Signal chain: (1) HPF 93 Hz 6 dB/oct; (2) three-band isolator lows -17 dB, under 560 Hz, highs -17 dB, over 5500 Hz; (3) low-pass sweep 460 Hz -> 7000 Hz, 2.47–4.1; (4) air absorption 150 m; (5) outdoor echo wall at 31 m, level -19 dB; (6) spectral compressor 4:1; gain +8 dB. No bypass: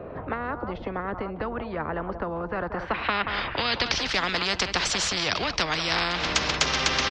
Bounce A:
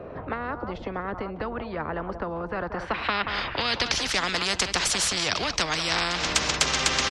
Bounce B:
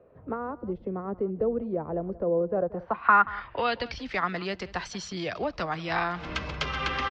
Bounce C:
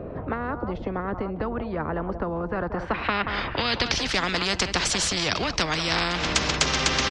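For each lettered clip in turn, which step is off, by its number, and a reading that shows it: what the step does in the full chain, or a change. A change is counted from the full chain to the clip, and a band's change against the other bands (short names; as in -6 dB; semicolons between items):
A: 4, 8 kHz band +5.0 dB; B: 6, 8 kHz band -16.0 dB; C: 2, 125 Hz band +3.5 dB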